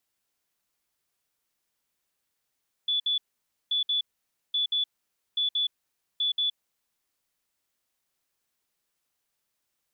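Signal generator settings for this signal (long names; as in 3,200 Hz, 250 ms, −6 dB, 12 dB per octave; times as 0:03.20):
beeps in groups sine 3,450 Hz, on 0.12 s, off 0.06 s, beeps 2, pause 0.53 s, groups 5, −23 dBFS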